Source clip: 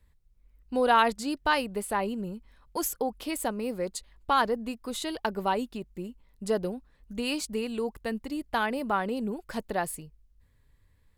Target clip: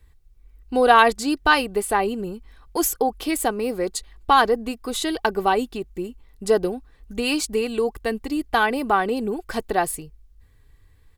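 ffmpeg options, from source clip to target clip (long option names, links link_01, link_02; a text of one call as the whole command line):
ffmpeg -i in.wav -af "aecho=1:1:2.6:0.44,volume=7.5dB" out.wav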